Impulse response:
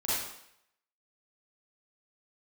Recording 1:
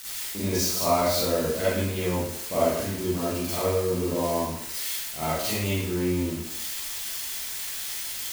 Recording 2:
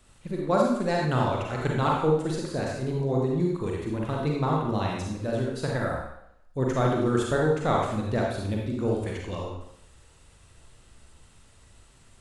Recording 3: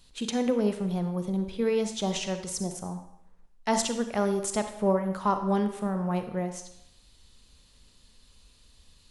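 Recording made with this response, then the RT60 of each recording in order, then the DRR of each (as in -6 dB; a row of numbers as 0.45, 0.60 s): 1; 0.75, 0.75, 0.75 s; -10.5, -2.0, 7.5 dB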